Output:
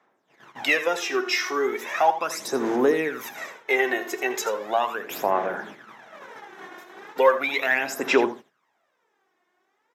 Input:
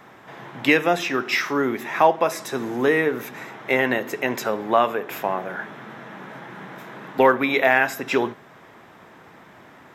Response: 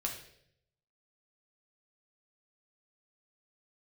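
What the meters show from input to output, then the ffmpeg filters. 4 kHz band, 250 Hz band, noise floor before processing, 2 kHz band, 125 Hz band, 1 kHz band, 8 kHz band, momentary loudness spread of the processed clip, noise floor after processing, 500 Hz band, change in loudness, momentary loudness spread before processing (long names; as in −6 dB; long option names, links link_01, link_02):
−0.5 dB, −4.5 dB, −48 dBFS, −2.5 dB, −13.0 dB, −3.0 dB, +3.0 dB, 20 LU, −72 dBFS, −2.0 dB, −2.5 dB, 20 LU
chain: -filter_complex "[0:a]agate=range=-25dB:threshold=-37dB:ratio=16:detection=peak,highpass=300,equalizer=frequency=6000:width_type=o:width=0.8:gain=6,asplit=2[link_01][link_02];[link_02]acompressor=threshold=-32dB:ratio=6,volume=2dB[link_03];[link_01][link_03]amix=inputs=2:normalize=0,aphaser=in_gain=1:out_gain=1:delay=2.8:decay=0.67:speed=0.37:type=sinusoidal,asplit=2[link_04][link_05];[link_05]aecho=0:1:82:0.224[link_06];[link_04][link_06]amix=inputs=2:normalize=0,volume=-8dB"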